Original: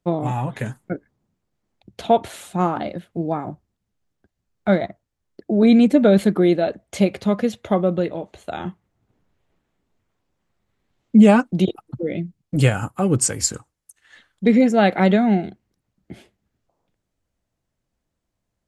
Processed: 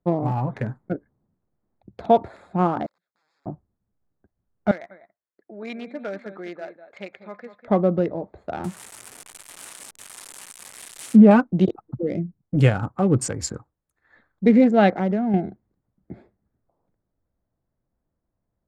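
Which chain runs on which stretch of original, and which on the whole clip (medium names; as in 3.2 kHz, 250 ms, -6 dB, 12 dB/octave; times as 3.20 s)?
2.86–3.46 s: integer overflow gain 25.5 dB + compression 16:1, threshold -44 dBFS + band-pass filter 5.7 kHz, Q 2
4.71–7.68 s: band-pass filter 2.3 kHz, Q 1.5 + delay 198 ms -11.5 dB
8.64–11.31 s: zero-crossing glitches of -19.5 dBFS + low-pass that closes with the level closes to 1.4 kHz, closed at -9 dBFS + peaking EQ 9.3 kHz +12.5 dB 0.58 oct
14.91–15.34 s: compression 1.5:1, threshold -28 dBFS + distance through air 270 m
whole clip: local Wiener filter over 15 samples; low-pass 2.6 kHz 6 dB/octave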